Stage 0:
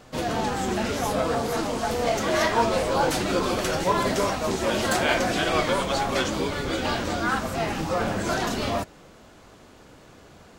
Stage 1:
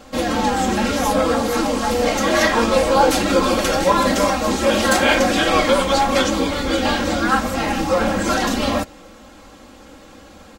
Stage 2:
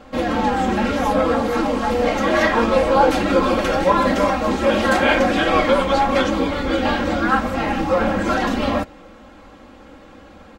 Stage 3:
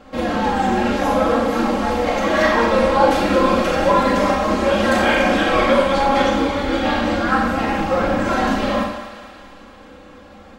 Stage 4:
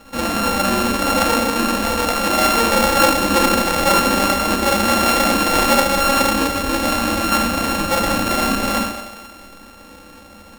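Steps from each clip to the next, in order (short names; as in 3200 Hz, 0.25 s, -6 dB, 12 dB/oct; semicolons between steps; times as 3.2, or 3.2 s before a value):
comb 3.7 ms, depth 80%; gain +5 dB
tone controls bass 0 dB, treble -13 dB
thinning echo 0.224 s, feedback 63%, high-pass 580 Hz, level -11.5 dB; Schroeder reverb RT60 0.75 s, combs from 30 ms, DRR 0.5 dB; gain -2 dB
sample sorter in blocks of 32 samples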